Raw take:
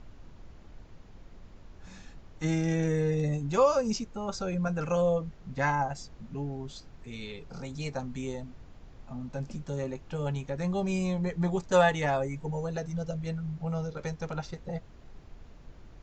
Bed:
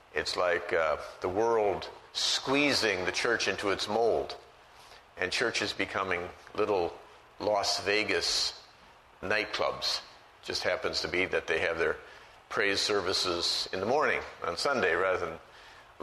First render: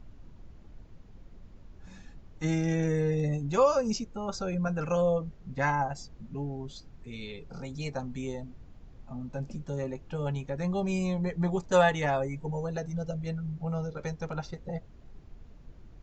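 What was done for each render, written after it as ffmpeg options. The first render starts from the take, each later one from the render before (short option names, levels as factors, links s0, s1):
-af "afftdn=nr=6:nf=-52"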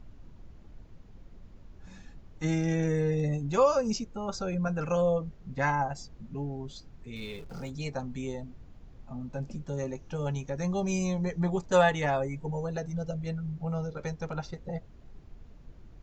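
-filter_complex "[0:a]asettb=1/sr,asplit=3[s0][s1][s2];[s0]atrim=end=7.164[s3];[s1]atrim=start=7.16:end=7.7,asetpts=PTS-STARTPTS,afade=t=in:d=0.004:c=qsin,afade=t=out:st=0.536:d=0.004:c=qsin,aeval=exprs='val(0)+0.5*0.00376*sgn(val(0))':c=same[s4];[s2]atrim=start=7.696[s5];[s3][s4]acrossfade=d=0.004:c1=hsin:c2=qsin[s6];[s6][s5]acrossfade=d=0.004:c1=qsin:c2=hsin,asettb=1/sr,asplit=3[s7][s8][s9];[s7]atrim=end=9.784[s10];[s8]atrim=start=9.78:end=11.4,asetpts=PTS-STARTPTS,afade=t=in:d=0.004:c=qsin,afade=t=out:st=1.616:d=0.004:c=qsin,equalizer=f=6000:w=4.9:g=13[s11];[s9]atrim=start=11.396[s12];[s10][s11]acrossfade=d=0.004:c1=hsin:c2=qsin[s13];[s13][s12]acrossfade=d=0.004:c1=qsin:c2=hsin"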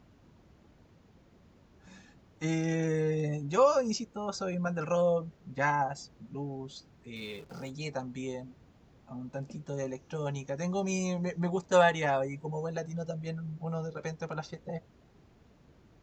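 -af "highpass=65,lowshelf=f=130:g=-9"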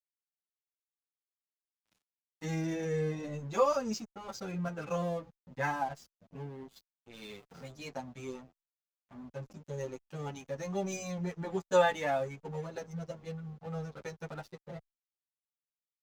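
-filter_complex "[0:a]aeval=exprs='sgn(val(0))*max(abs(val(0))-0.00473,0)':c=same,asplit=2[s0][s1];[s1]adelay=8.2,afreqshift=-2.4[s2];[s0][s2]amix=inputs=2:normalize=1"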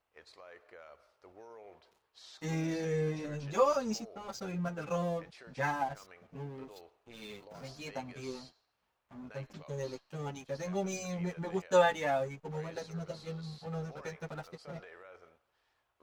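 -filter_complex "[1:a]volume=0.0531[s0];[0:a][s0]amix=inputs=2:normalize=0"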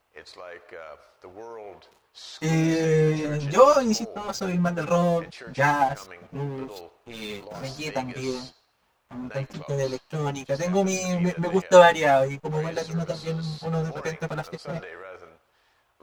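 -af "volume=3.98"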